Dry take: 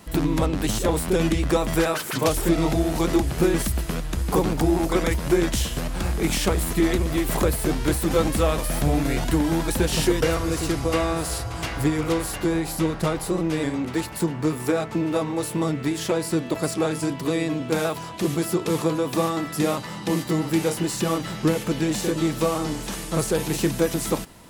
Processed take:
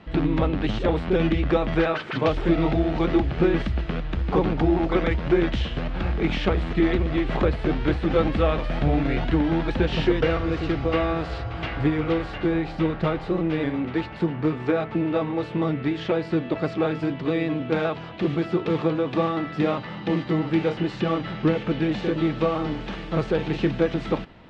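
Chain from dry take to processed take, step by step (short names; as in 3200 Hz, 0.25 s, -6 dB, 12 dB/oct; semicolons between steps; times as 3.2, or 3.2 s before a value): LPF 3400 Hz 24 dB/oct; notch 1000 Hz, Q 15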